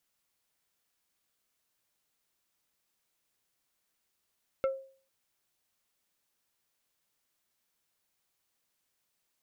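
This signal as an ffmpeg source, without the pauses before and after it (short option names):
-f lavfi -i "aevalsrc='0.0708*pow(10,-3*t/0.45)*sin(2*PI*536*t)+0.0266*pow(10,-3*t/0.15)*sin(2*PI*1340*t)+0.01*pow(10,-3*t/0.085)*sin(2*PI*2144*t)+0.00376*pow(10,-3*t/0.065)*sin(2*PI*2680*t)+0.00141*pow(10,-3*t/0.048)*sin(2*PI*3484*t)':d=0.45:s=44100"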